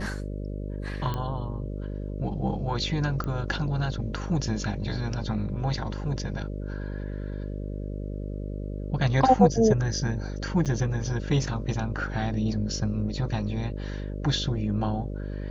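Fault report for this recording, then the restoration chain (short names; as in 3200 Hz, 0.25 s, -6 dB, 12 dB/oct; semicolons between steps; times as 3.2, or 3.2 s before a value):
buzz 50 Hz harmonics 12 -33 dBFS
1.14 pop -18 dBFS
3.24 pop -20 dBFS
10.65–10.66 gap 7.8 ms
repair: de-click; de-hum 50 Hz, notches 12; interpolate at 10.65, 7.8 ms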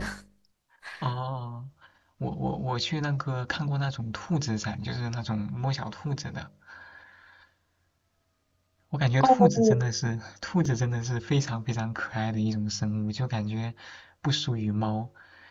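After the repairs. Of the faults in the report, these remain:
3.24 pop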